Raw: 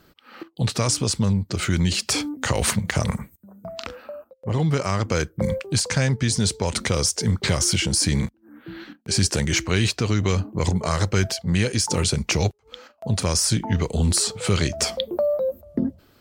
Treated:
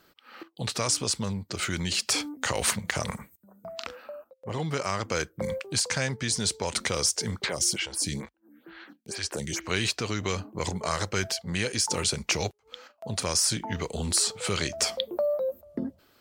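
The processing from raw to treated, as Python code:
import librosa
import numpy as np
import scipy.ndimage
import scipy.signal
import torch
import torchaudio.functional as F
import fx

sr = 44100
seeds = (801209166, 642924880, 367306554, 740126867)

y = fx.low_shelf(x, sr, hz=280.0, db=-11.5)
y = fx.stagger_phaser(y, sr, hz=2.2, at=(7.44, 9.63), fade=0.02)
y = F.gain(torch.from_numpy(y), -2.5).numpy()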